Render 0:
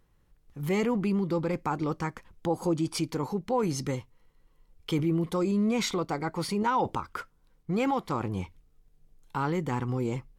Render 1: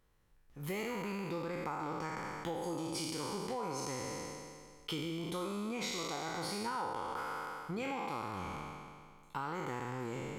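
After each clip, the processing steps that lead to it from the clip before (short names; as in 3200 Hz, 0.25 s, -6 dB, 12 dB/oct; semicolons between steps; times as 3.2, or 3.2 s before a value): spectral trails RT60 1.98 s; low shelf 420 Hz -6 dB; compressor, threshold -31 dBFS, peak gain reduction 12 dB; gain -4.5 dB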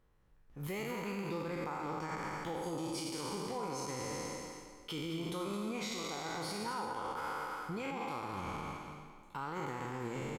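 limiter -33 dBFS, peak gain reduction 7.5 dB; echo 0.217 s -8 dB; mismatched tape noise reduction decoder only; gain +2 dB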